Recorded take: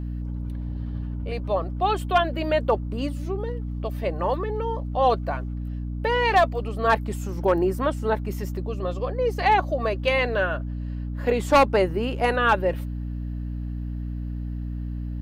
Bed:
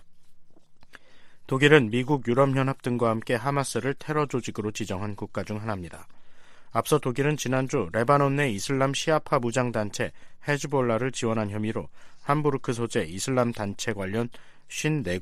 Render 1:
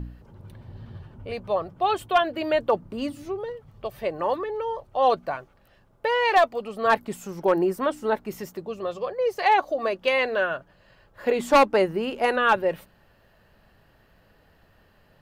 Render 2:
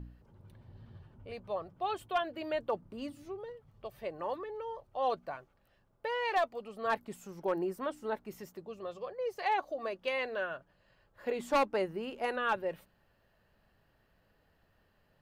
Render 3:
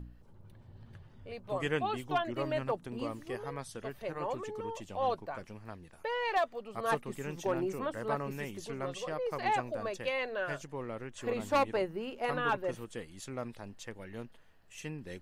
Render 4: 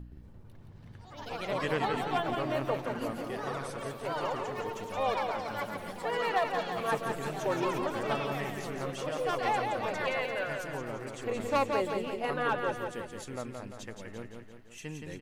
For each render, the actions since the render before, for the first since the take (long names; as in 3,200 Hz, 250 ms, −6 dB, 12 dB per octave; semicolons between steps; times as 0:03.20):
hum removal 60 Hz, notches 5
level −11.5 dB
mix in bed −16 dB
repeating echo 172 ms, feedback 53%, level −5 dB; delay with pitch and tempo change per echo 120 ms, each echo +4 semitones, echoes 3, each echo −6 dB